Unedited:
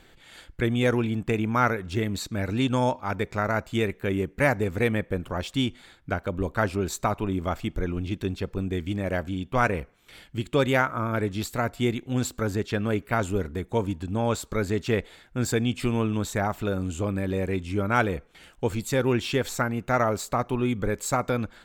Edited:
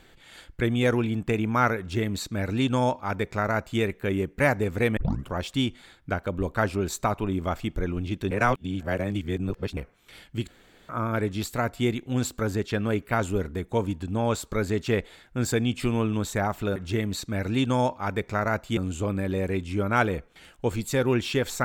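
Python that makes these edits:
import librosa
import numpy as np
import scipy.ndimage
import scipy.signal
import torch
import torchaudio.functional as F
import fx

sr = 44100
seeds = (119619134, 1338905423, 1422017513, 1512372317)

y = fx.edit(x, sr, fx.duplicate(start_s=1.79, length_s=2.01, to_s=16.76),
    fx.tape_start(start_s=4.97, length_s=0.29),
    fx.reverse_span(start_s=8.31, length_s=1.46),
    fx.room_tone_fill(start_s=10.48, length_s=0.41), tone=tone)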